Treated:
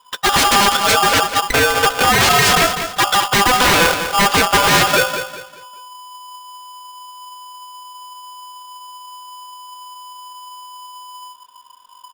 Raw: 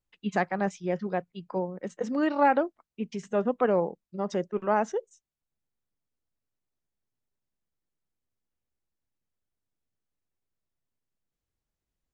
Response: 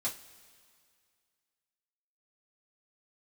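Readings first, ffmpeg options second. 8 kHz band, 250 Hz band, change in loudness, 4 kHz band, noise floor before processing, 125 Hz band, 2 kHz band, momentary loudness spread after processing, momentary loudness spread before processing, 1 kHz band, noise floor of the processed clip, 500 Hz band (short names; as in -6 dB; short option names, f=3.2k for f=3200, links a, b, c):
n/a, +6.0 dB, +16.0 dB, +36.0 dB, under -85 dBFS, +14.0 dB, +22.5 dB, 5 LU, 12 LU, +16.0 dB, -45 dBFS, +8.0 dB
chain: -filter_complex "[0:a]lowshelf=f=140:g=11,bandreject=f=60:t=h:w=6,bandreject=f=120:t=h:w=6,bandreject=f=180:t=h:w=6,bandreject=f=240:t=h:w=6,bandreject=f=300:t=h:w=6,bandreject=f=360:t=h:w=6,bandreject=f=420:t=h:w=6,bandreject=f=480:t=h:w=6,aecho=1:1:4:0.51,asubboost=boost=2:cutoff=74,alimiter=limit=-17.5dB:level=0:latency=1:release=17,lowpass=f=2.4k:t=q:w=9.7,aeval=exprs='0.237*sin(PI/2*5.62*val(0)/0.237)':c=same,asplit=2[a][b];[b]aecho=0:1:199|398|597|796:0.355|0.117|0.0386|0.0128[c];[a][c]amix=inputs=2:normalize=0,aeval=exprs='val(0)*sgn(sin(2*PI*1000*n/s))':c=same,volume=2.5dB"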